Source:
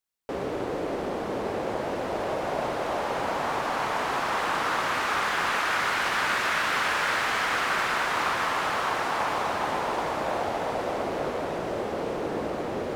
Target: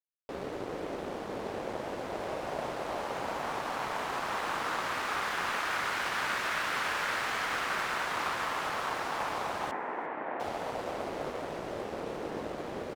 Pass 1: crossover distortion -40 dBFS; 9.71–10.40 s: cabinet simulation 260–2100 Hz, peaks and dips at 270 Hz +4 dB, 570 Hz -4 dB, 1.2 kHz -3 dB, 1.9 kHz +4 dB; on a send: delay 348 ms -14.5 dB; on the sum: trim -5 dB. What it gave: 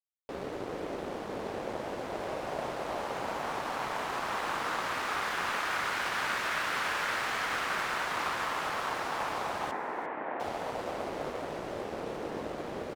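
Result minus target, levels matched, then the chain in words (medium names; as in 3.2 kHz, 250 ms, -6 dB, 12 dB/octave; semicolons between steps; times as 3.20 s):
echo-to-direct +9.5 dB
crossover distortion -40 dBFS; 9.71–10.40 s: cabinet simulation 260–2100 Hz, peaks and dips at 270 Hz +4 dB, 570 Hz -4 dB, 1.2 kHz -3 dB, 1.9 kHz +4 dB; on a send: delay 348 ms -24 dB; on the sum: trim -5 dB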